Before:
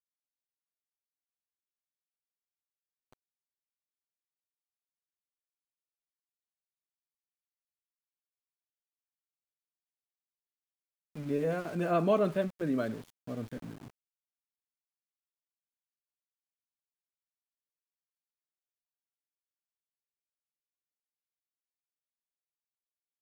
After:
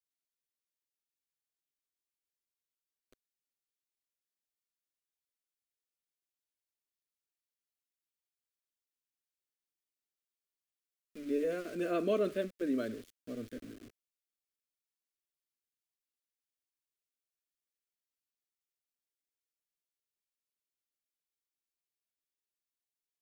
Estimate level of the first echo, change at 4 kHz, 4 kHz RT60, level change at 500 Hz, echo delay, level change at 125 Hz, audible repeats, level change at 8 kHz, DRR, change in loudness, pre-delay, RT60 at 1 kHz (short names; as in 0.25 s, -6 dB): none, -1.0 dB, none, -3.0 dB, none, -12.5 dB, none, n/a, none, -3.5 dB, none, none